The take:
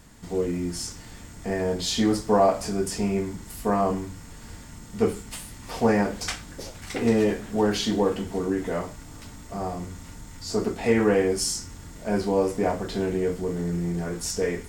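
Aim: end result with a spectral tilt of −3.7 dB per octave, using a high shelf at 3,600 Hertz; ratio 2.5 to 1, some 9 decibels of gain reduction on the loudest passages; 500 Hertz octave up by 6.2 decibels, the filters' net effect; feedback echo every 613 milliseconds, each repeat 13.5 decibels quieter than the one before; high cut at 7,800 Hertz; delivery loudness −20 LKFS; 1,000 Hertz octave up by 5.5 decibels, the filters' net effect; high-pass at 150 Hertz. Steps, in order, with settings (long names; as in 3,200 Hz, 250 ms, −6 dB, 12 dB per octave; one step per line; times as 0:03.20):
high-pass filter 150 Hz
low-pass filter 7,800 Hz
parametric band 500 Hz +6.5 dB
parametric band 1,000 Hz +4 dB
high-shelf EQ 3,600 Hz +8.5 dB
downward compressor 2.5 to 1, threshold −24 dBFS
repeating echo 613 ms, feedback 21%, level −13.5 dB
level +7.5 dB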